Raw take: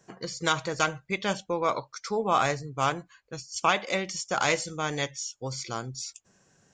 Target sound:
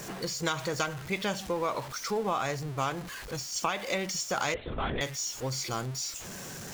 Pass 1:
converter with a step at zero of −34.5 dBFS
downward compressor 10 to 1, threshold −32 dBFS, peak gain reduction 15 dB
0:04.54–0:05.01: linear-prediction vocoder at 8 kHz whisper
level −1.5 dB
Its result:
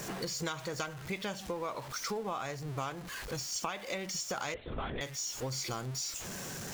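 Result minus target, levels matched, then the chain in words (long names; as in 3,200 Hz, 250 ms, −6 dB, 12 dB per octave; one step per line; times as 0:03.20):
downward compressor: peak gain reduction +7 dB
converter with a step at zero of −34.5 dBFS
downward compressor 10 to 1, threshold −24 dBFS, peak gain reduction 8 dB
0:04.54–0:05.01: linear-prediction vocoder at 8 kHz whisper
level −1.5 dB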